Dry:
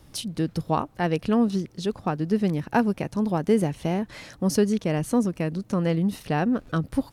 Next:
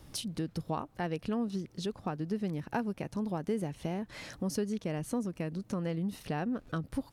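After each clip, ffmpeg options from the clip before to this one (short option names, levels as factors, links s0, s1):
-af "acompressor=threshold=0.0158:ratio=2,volume=0.841"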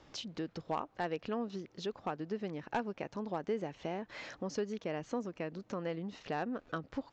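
-af "bass=f=250:g=-13,treble=f=4000:g=-8,aresample=16000,volume=21.1,asoftclip=hard,volume=0.0473,aresample=44100,volume=1.12"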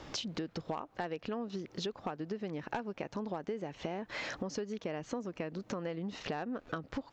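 -af "acompressor=threshold=0.00447:ratio=5,volume=3.55"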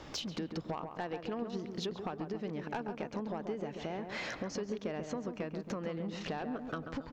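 -filter_complex "[0:a]asoftclip=type=tanh:threshold=0.0422,asplit=2[s0][s1];[s1]adelay=137,lowpass=f=1400:p=1,volume=0.501,asplit=2[s2][s3];[s3]adelay=137,lowpass=f=1400:p=1,volume=0.53,asplit=2[s4][s5];[s5]adelay=137,lowpass=f=1400:p=1,volume=0.53,asplit=2[s6][s7];[s7]adelay=137,lowpass=f=1400:p=1,volume=0.53,asplit=2[s8][s9];[s9]adelay=137,lowpass=f=1400:p=1,volume=0.53,asplit=2[s10][s11];[s11]adelay=137,lowpass=f=1400:p=1,volume=0.53,asplit=2[s12][s13];[s13]adelay=137,lowpass=f=1400:p=1,volume=0.53[s14];[s0][s2][s4][s6][s8][s10][s12][s14]amix=inputs=8:normalize=0"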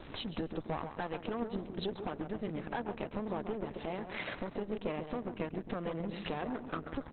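-af "aeval=exprs='if(lt(val(0),0),0.251*val(0),val(0))':c=same,volume=1.88" -ar 48000 -c:a libopus -b:a 8k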